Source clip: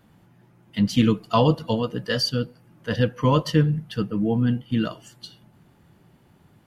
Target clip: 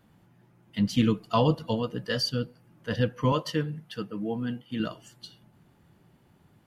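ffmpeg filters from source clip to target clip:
-filter_complex "[0:a]asettb=1/sr,asplit=3[s0][s1][s2];[s0]atrim=end=3.324[s3];[s1]atrim=start=3.32:end=4.8,asetpts=PTS-STARTPTS,afade=t=in:d=0.004:c=qsin,afade=t=out:st=1.476:d=0.004:c=qsin,highpass=f=340:p=1[s4];[s2]atrim=start=4.796[s5];[s3][s4]acrossfade=d=0.004:c1=hsin:c2=qsin[s6];[s6][s5]acrossfade=d=0.004:c1=qsin:c2=hsin,volume=0.596"

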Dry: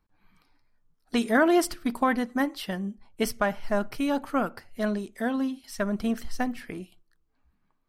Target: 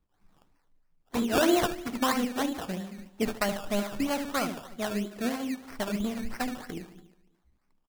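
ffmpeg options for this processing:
-filter_complex "[0:a]asplit=2[s0][s1];[s1]adelay=73,lowpass=f=1700:p=1,volume=0.501,asplit=2[s2][s3];[s3]adelay=73,lowpass=f=1700:p=1,volume=0.5,asplit=2[s4][s5];[s5]adelay=73,lowpass=f=1700:p=1,volume=0.5,asplit=2[s6][s7];[s7]adelay=73,lowpass=f=1700:p=1,volume=0.5,asplit=2[s8][s9];[s9]adelay=73,lowpass=f=1700:p=1,volume=0.5,asplit=2[s10][s11];[s11]adelay=73,lowpass=f=1700:p=1,volume=0.5[s12];[s2][s4][s6][s8][s10][s12]amix=inputs=6:normalize=0[s13];[s0][s13]amix=inputs=2:normalize=0,acrossover=split=570[s14][s15];[s14]aeval=exprs='val(0)*(1-0.7/2+0.7/2*cos(2*PI*4*n/s))':c=same[s16];[s15]aeval=exprs='val(0)*(1-0.7/2-0.7/2*cos(2*PI*4*n/s))':c=same[s17];[s16][s17]amix=inputs=2:normalize=0,highshelf=f=7700:g=6,asplit=2[s18][s19];[s19]aecho=0:1:287|574:0.075|0.0165[s20];[s18][s20]amix=inputs=2:normalize=0,acrusher=samples=17:mix=1:aa=0.000001:lfo=1:lforange=10.2:lforate=3.1"

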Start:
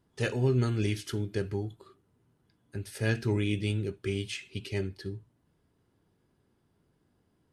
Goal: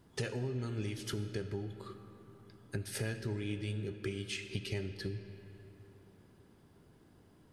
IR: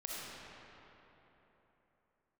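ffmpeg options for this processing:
-filter_complex "[0:a]acompressor=threshold=0.00708:ratio=10,asplit=2[s0][s1];[1:a]atrim=start_sample=2205[s2];[s1][s2]afir=irnorm=-1:irlink=0,volume=0.376[s3];[s0][s3]amix=inputs=2:normalize=0,volume=2.11"

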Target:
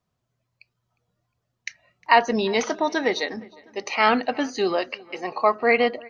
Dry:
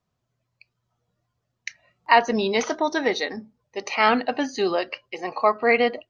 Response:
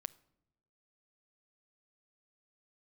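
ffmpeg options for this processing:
-filter_complex "[0:a]asplit=2[s0][s1];[s1]adelay=357,lowpass=f=3700:p=1,volume=0.0668,asplit=2[s2][s3];[s3]adelay=357,lowpass=f=3700:p=1,volume=0.52,asplit=2[s4][s5];[s5]adelay=357,lowpass=f=3700:p=1,volume=0.52[s6];[s0][s2][s4][s6]amix=inputs=4:normalize=0"

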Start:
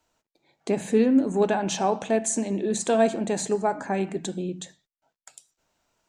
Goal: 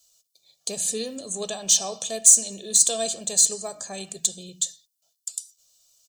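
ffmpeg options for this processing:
-af "aecho=1:1:1.7:0.75,aexciter=amount=8.9:drive=9.2:freq=3200,volume=0.266"

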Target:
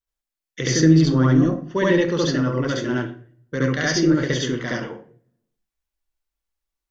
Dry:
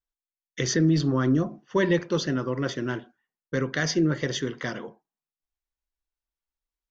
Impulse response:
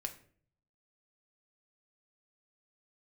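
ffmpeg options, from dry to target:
-filter_complex "[0:a]asplit=2[s0][s1];[1:a]atrim=start_sample=2205,adelay=69[s2];[s1][s2]afir=irnorm=-1:irlink=0,volume=1.78[s3];[s0][s3]amix=inputs=2:normalize=0"

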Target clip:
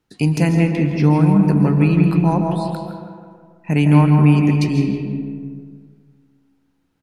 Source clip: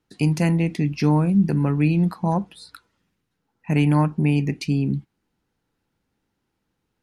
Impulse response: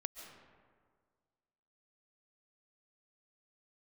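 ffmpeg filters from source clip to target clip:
-filter_complex "[0:a]asettb=1/sr,asplit=3[s0][s1][s2];[s0]atrim=end=0.684[s3];[s1]atrim=start=0.68:end=1.34,asetpts=PTS-STARTPTS,afade=t=in:d=0.004:c=qsin,afade=t=out:st=0.656:d=0.004:c=qsin,acrossover=split=3400[s4][s5];[s5]acompressor=threshold=0.00631:ratio=4:attack=1:release=60[s6];[s4][s6]amix=inputs=2:normalize=0[s7];[s2]atrim=start=1.336[s8];[s3][s7]acrossfade=d=0.004:c1=hsin:c2=qsin[s9];[s9][s8]acrossfade=d=0.004:c1=qsin:c2=hsin,asplit=2[s10][s11];[s11]adelay=163,lowpass=f=1800:p=1,volume=0.531,asplit=2[s12][s13];[s13]adelay=163,lowpass=f=1800:p=1,volume=0.55,asplit=2[s14][s15];[s15]adelay=163,lowpass=f=1800:p=1,volume=0.55,asplit=2[s16][s17];[s17]adelay=163,lowpass=f=1800:p=1,volume=0.55,asplit=2[s18][s19];[s19]adelay=163,lowpass=f=1800:p=1,volume=0.55,asplit=2[s20][s21];[s21]adelay=163,lowpass=f=1800:p=1,volume=0.55,asplit=2[s22][s23];[s23]adelay=163,lowpass=f=1800:p=1,volume=0.55[s24];[s10][s12][s14][s16][s18][s20][s22][s24]amix=inputs=8:normalize=0[s25];[1:a]atrim=start_sample=2205[s26];[s25][s26]afir=irnorm=-1:irlink=0,volume=2"

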